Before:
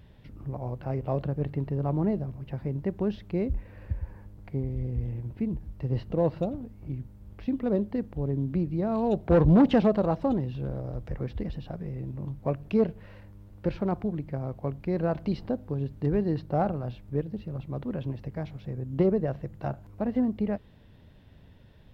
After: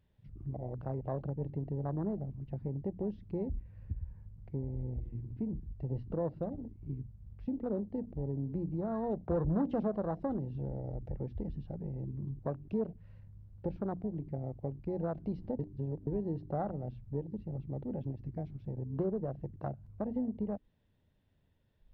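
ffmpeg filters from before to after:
-filter_complex "[0:a]asplit=3[a][b][c];[a]atrim=end=15.592[d];[b]atrim=start=15.588:end=16.072,asetpts=PTS-STARTPTS,areverse[e];[c]atrim=start=16.068[f];[d][e]acrossfade=d=0.004:c1=hsin:c2=hsin[g];[g][f]acrossfade=d=0.004:c1=hsin:c2=hsin,bandreject=f=60:t=h:w=6,bandreject=f=120:t=h:w=6,bandreject=f=180:t=h:w=6,bandreject=f=240:t=h:w=6,bandreject=f=300:t=h:w=6,afwtdn=0.02,acompressor=threshold=-33dB:ratio=2,volume=-2.5dB"

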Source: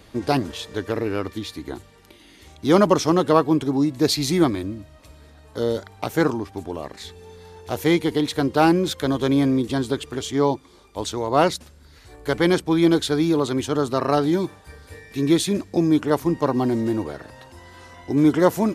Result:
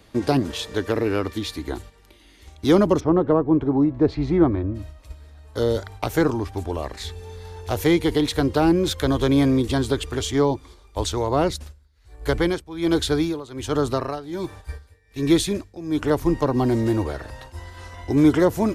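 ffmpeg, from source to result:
-filter_complex "[0:a]asplit=3[a][b][c];[a]afade=t=out:st=2.99:d=0.02[d];[b]lowpass=1.2k,afade=t=in:st=2.99:d=0.02,afade=t=out:st=4.74:d=0.02[e];[c]afade=t=in:st=4.74:d=0.02[f];[d][e][f]amix=inputs=3:normalize=0,asplit=3[g][h][i];[g]afade=t=out:st=11.55:d=0.02[j];[h]tremolo=f=1.3:d=0.88,afade=t=in:st=11.55:d=0.02,afade=t=out:st=16.02:d=0.02[k];[i]afade=t=in:st=16.02:d=0.02[l];[j][k][l]amix=inputs=3:normalize=0,agate=range=-7dB:threshold=-44dB:ratio=16:detection=peak,asubboost=boost=8:cutoff=61,acrossover=split=440[m][n];[n]acompressor=threshold=-26dB:ratio=6[o];[m][o]amix=inputs=2:normalize=0,volume=3.5dB"

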